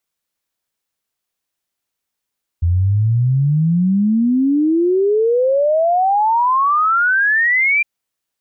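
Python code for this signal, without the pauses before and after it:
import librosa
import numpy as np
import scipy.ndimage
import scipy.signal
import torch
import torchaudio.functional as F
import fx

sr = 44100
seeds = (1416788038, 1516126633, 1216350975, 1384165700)

y = fx.ess(sr, length_s=5.21, from_hz=83.0, to_hz=2400.0, level_db=-11.5)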